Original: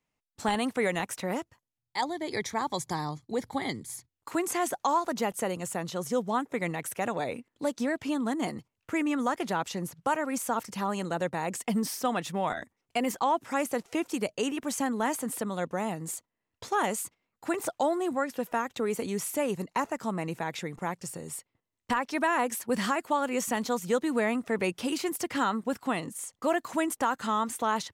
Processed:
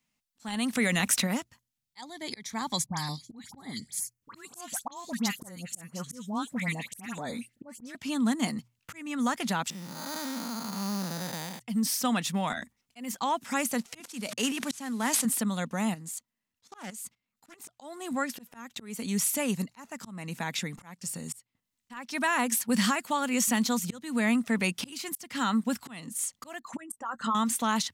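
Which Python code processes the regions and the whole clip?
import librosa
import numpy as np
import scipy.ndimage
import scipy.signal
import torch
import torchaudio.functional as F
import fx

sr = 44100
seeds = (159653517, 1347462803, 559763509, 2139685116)

y = fx.chain(x, sr, fx.peak_eq(hz=900.0, db=-4.5, octaves=0.4),
    fx.env_flatten(amount_pct=50), at=(0.73, 1.27))
y = fx.chain(y, sr, fx.dispersion(late='highs', ms=80.0, hz=1700.0),
    fx.filter_held_notch(hz=4.4, low_hz=400.0, high_hz=3700.0), at=(2.86, 7.95))
y = fx.chain(y, sr, fx.spec_blur(span_ms=307.0),
    fx.highpass(hz=150.0, slope=12),
    fx.resample_bad(factor=8, down='filtered', up='hold'), at=(9.7, 11.6))
y = fx.chain(y, sr, fx.cvsd(bps=64000),
    fx.highpass(hz=220.0, slope=12),
    fx.sustainer(db_per_s=63.0), at=(14.0, 15.25))
y = fx.chain(y, sr, fx.level_steps(step_db=15),
    fx.doppler_dist(depth_ms=0.27), at=(15.94, 17.71))
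y = fx.chain(y, sr, fx.envelope_sharpen(power=2.0),
    fx.peak_eq(hz=7900.0, db=3.0, octaves=0.25),
    fx.doubler(ms=13.0, db=-12.0), at=(26.59, 27.35))
y = fx.curve_eq(y, sr, hz=(120.0, 230.0, 350.0, 4200.0), db=(0, 9, -6, 9))
y = fx.auto_swell(y, sr, attack_ms=372.0)
y = fx.hum_notches(y, sr, base_hz=60, count=2)
y = F.gain(torch.from_numpy(y), -1.5).numpy()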